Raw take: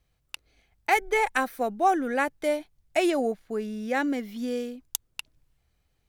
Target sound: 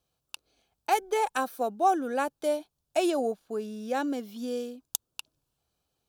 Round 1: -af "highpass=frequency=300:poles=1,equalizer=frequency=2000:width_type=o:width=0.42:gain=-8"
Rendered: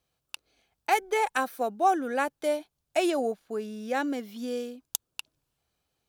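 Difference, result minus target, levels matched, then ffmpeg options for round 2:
2,000 Hz band +4.0 dB
-af "highpass=frequency=300:poles=1,equalizer=frequency=2000:width_type=o:width=0.42:gain=-18"

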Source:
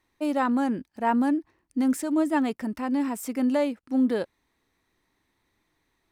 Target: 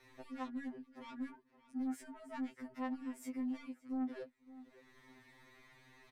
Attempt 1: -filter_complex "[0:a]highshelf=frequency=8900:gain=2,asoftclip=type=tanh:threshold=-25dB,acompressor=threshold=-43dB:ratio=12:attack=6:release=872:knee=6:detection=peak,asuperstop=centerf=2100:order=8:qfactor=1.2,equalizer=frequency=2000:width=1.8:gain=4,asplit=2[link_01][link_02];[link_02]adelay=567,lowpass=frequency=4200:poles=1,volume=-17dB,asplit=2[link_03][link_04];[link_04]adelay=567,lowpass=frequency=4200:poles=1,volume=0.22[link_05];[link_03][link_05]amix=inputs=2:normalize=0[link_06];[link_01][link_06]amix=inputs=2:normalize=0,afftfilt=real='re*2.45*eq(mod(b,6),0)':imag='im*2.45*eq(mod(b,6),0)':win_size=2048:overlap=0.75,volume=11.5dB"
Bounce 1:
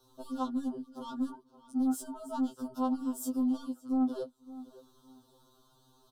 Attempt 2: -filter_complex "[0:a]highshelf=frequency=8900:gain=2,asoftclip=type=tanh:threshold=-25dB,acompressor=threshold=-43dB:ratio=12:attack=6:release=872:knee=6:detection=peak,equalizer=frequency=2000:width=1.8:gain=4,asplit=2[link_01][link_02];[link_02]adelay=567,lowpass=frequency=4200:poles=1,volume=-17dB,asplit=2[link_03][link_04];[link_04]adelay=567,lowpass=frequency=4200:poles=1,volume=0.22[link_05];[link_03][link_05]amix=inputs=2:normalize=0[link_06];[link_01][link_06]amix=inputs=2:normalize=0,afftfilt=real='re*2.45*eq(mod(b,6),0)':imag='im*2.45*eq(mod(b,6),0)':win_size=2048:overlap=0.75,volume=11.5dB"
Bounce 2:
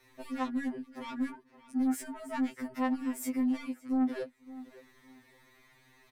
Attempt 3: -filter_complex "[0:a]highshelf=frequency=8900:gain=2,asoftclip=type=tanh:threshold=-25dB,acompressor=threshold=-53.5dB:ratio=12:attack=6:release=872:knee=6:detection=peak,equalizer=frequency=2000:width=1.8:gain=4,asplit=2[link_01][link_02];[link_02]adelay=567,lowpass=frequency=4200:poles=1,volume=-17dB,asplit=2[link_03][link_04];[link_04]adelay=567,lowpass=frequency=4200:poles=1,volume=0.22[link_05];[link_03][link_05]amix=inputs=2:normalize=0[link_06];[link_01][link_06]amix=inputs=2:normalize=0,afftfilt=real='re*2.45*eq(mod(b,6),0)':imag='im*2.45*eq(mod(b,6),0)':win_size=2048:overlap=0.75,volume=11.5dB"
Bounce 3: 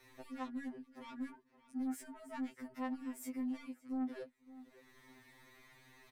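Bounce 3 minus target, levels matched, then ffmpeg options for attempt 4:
8,000 Hz band +4.5 dB
-filter_complex "[0:a]highshelf=frequency=8900:gain=-9.5,asoftclip=type=tanh:threshold=-25dB,acompressor=threshold=-53.5dB:ratio=12:attack=6:release=872:knee=6:detection=peak,equalizer=frequency=2000:width=1.8:gain=4,asplit=2[link_01][link_02];[link_02]adelay=567,lowpass=frequency=4200:poles=1,volume=-17dB,asplit=2[link_03][link_04];[link_04]adelay=567,lowpass=frequency=4200:poles=1,volume=0.22[link_05];[link_03][link_05]amix=inputs=2:normalize=0[link_06];[link_01][link_06]amix=inputs=2:normalize=0,afftfilt=real='re*2.45*eq(mod(b,6),0)':imag='im*2.45*eq(mod(b,6),0)':win_size=2048:overlap=0.75,volume=11.5dB"

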